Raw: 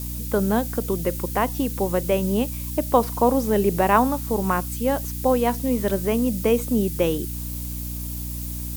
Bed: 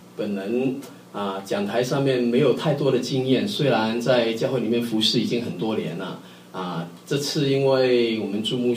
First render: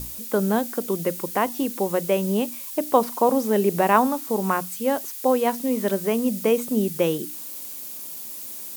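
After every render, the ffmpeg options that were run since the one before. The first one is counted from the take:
ffmpeg -i in.wav -af "bandreject=frequency=60:width_type=h:width=6,bandreject=frequency=120:width_type=h:width=6,bandreject=frequency=180:width_type=h:width=6,bandreject=frequency=240:width_type=h:width=6,bandreject=frequency=300:width_type=h:width=6" out.wav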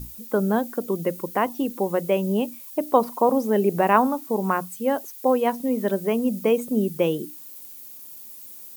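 ffmpeg -i in.wav -af "afftdn=noise_reduction=10:noise_floor=-36" out.wav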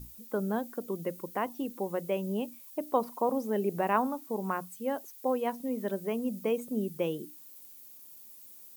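ffmpeg -i in.wav -af "volume=-9.5dB" out.wav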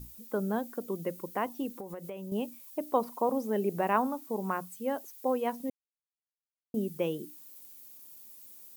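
ffmpeg -i in.wav -filter_complex "[0:a]asettb=1/sr,asplit=3[link_01][link_02][link_03];[link_01]atrim=end=1.764[link_04];[link_02]atrim=start=1.76:end=2.32,asetpts=PTS-STARTPTS,afade=type=in:duration=0.004:curve=qsin,afade=type=out:start_time=0.556:duration=0.004:curve=qsin,acompressor=threshold=-36dB:ratio=12:attack=3.2:release=140:knee=1:detection=peak[link_05];[link_03]atrim=start=2.316[link_06];[link_04][link_05]acrossfade=duration=0.004:curve1=hsin:curve2=qsin[link_07];[link_07][link_06]acrossfade=duration=0.004:curve1=qsin:curve2=hsin,asplit=3[link_08][link_09][link_10];[link_08]atrim=end=5.7,asetpts=PTS-STARTPTS,afade=type=out:start_time=5.696:duration=0.004:curve=hsin[link_11];[link_09]atrim=start=5.7:end=6.74,asetpts=PTS-STARTPTS,volume=0[link_12];[link_10]atrim=start=6.74,asetpts=PTS-STARTPTS,afade=type=in:duration=0.004:curve=hsin[link_13];[link_11][link_12][link_13]concat=n=3:v=0:a=1" out.wav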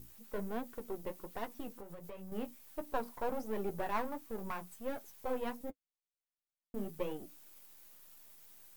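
ffmpeg -i in.wav -af "aeval=exprs='if(lt(val(0),0),0.251*val(0),val(0))':channel_layout=same,flanger=delay=8.5:depth=7.5:regen=-32:speed=1.4:shape=triangular" out.wav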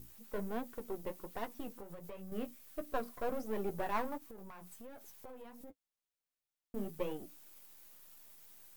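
ffmpeg -i in.wav -filter_complex "[0:a]asettb=1/sr,asplit=3[link_01][link_02][link_03];[link_01]atrim=end=2.184[link_04];[link_02]atrim=start=2.18:end=3.47,asetpts=PTS-STARTPTS,afade=type=in:duration=0.004:curve=qsin,afade=type=out:start_time=1.286:duration=0.004:curve=qsin,asuperstop=centerf=880:order=4:qfactor=4.3[link_05];[link_03]atrim=start=3.466[link_06];[link_04][link_05]acrossfade=duration=0.004:curve1=hsin:curve2=qsin[link_07];[link_07][link_06]acrossfade=duration=0.004:curve1=qsin:curve2=hsin,asplit=3[link_08][link_09][link_10];[link_08]afade=type=out:start_time=4.17:duration=0.02[link_11];[link_09]acompressor=threshold=-46dB:ratio=10:attack=3.2:release=140:knee=1:detection=peak,afade=type=in:start_time=4.17:duration=0.02,afade=type=out:start_time=5.7:duration=0.02[link_12];[link_10]afade=type=in:start_time=5.7:duration=0.02[link_13];[link_11][link_12][link_13]amix=inputs=3:normalize=0" out.wav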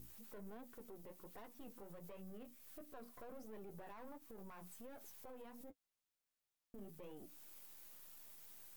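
ffmpeg -i in.wav -af "acompressor=threshold=-51dB:ratio=2,alimiter=level_in=20.5dB:limit=-24dB:level=0:latency=1:release=12,volume=-20.5dB" out.wav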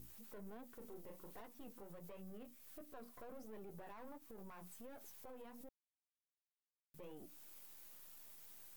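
ffmpeg -i in.wav -filter_complex "[0:a]asettb=1/sr,asplit=3[link_01][link_02][link_03];[link_01]atrim=end=0.784[link_04];[link_02]atrim=start=0.78:end=1.41,asetpts=PTS-STARTPTS,afade=type=in:duration=0.004:curve=qsin,afade=type=out:start_time=0.626:duration=0.004:curve=qsin,asplit=2[link_05][link_06];[link_06]adelay=37,volume=-5dB[link_07];[link_05][link_07]amix=inputs=2:normalize=0,atrim=end_sample=27783[link_08];[link_03]atrim=start=1.406[link_09];[link_04][link_08]acrossfade=duration=0.004:curve1=hsin:curve2=qsin[link_10];[link_10][link_09]acrossfade=duration=0.004:curve1=qsin:curve2=hsin,asplit=3[link_11][link_12][link_13];[link_11]atrim=end=5.69,asetpts=PTS-STARTPTS,afade=type=out:start_time=5.686:duration=0.004:curve=hsin[link_14];[link_12]atrim=start=5.69:end=6.94,asetpts=PTS-STARTPTS,volume=0[link_15];[link_13]atrim=start=6.94,asetpts=PTS-STARTPTS,afade=type=in:duration=0.004:curve=hsin[link_16];[link_14][link_15][link_16]concat=n=3:v=0:a=1" out.wav

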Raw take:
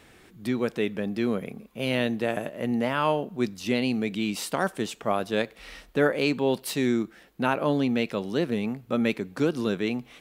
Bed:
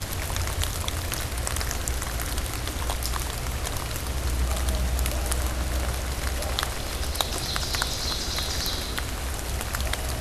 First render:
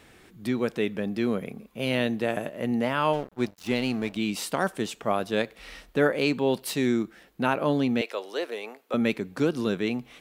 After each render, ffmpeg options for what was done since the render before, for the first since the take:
ffmpeg -i in.wav -filter_complex "[0:a]asettb=1/sr,asplit=3[link_01][link_02][link_03];[link_01]atrim=end=3.134[link_04];[link_02]atrim=start=3.13:end=4.17,asetpts=PTS-STARTPTS,afade=type=in:duration=0.004:curve=qsin,afade=type=out:start_time=1.036:duration=0.004:curve=qsin,aeval=exprs='sgn(val(0))*max(abs(val(0))-0.0119,0)':channel_layout=same[link_05];[link_03]atrim=start=4.166[link_06];[link_04][link_05]acrossfade=duration=0.004:curve1=hsin:curve2=qsin[link_07];[link_07][link_06]acrossfade=duration=0.004:curve1=qsin:curve2=hsin,asettb=1/sr,asplit=3[link_08][link_09][link_10];[link_08]atrim=end=8.014[link_11];[link_09]atrim=start=8.01:end=8.94,asetpts=PTS-STARTPTS,afade=type=in:duration=0.004:curve=qsin,afade=type=out:start_time=0.926:duration=0.004:curve=qsin,highpass=frequency=430:width=0.5412,highpass=frequency=430:width=1.3066[link_12];[link_10]atrim=start=8.936[link_13];[link_11][link_12]acrossfade=duration=0.004:curve1=hsin:curve2=qsin[link_14];[link_14][link_13]acrossfade=duration=0.004:curve1=qsin:curve2=hsin" out.wav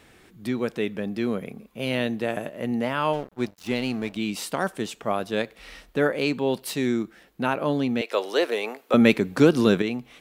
ffmpeg -i in.wav -filter_complex "[0:a]asplit=3[link_01][link_02][link_03];[link_01]atrim=end=8.122[link_04];[link_02]atrim=start=8.118:end=9.822,asetpts=PTS-STARTPTS,volume=8dB[link_05];[link_03]atrim=start=9.818[link_06];[link_04][link_05]acrossfade=duration=0.004:curve1=hsin:curve2=hsin[link_07];[link_07][link_06]acrossfade=duration=0.004:curve1=hsin:curve2=hsin" out.wav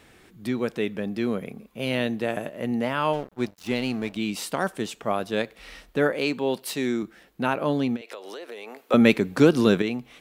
ffmpeg -i in.wav -filter_complex "[0:a]asettb=1/sr,asplit=3[link_01][link_02][link_03];[link_01]atrim=end=6.144[link_04];[link_02]atrim=start=6.14:end=7.03,asetpts=PTS-STARTPTS,afade=type=in:duration=0.004:curve=qsin,afade=type=out:start_time=0.886:duration=0.004:curve=qsin,highpass=frequency=200:poles=1[link_05];[link_03]atrim=start=7.026[link_06];[link_04][link_05]acrossfade=duration=0.004:curve1=hsin:curve2=qsin[link_07];[link_07][link_06]acrossfade=duration=0.004:curve1=qsin:curve2=hsin,asplit=3[link_08][link_09][link_10];[link_08]afade=type=out:start_time=7.95:duration=0.02[link_11];[link_09]acompressor=threshold=-34dB:ratio=16:attack=3.2:release=140:knee=1:detection=peak,afade=type=in:start_time=7.95:duration=0.02,afade=type=out:start_time=8.86:duration=0.02[link_12];[link_10]afade=type=in:start_time=8.86:duration=0.02[link_13];[link_11][link_12][link_13]amix=inputs=3:normalize=0" out.wav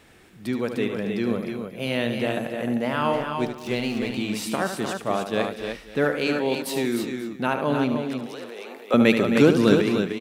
ffmpeg -i in.wav -af "aecho=1:1:75|140|194|264|304|538:0.376|0.1|0.112|0.251|0.501|0.106" out.wav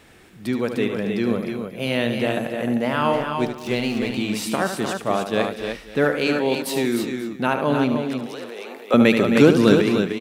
ffmpeg -i in.wav -af "volume=3dB,alimiter=limit=-2dB:level=0:latency=1" out.wav

